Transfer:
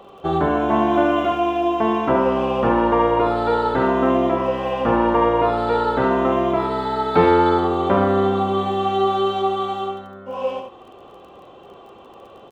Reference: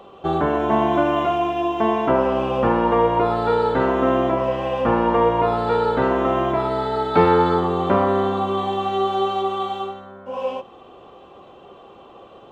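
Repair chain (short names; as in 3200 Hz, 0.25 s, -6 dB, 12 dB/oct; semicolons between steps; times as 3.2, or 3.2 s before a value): de-click; inverse comb 72 ms -6 dB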